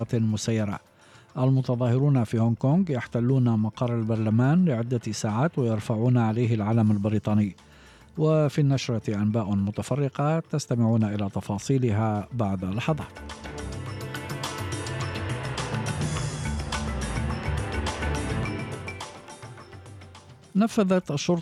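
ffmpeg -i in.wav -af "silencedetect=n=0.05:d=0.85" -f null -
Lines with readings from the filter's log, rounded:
silence_start: 19.03
silence_end: 20.56 | silence_duration: 1.52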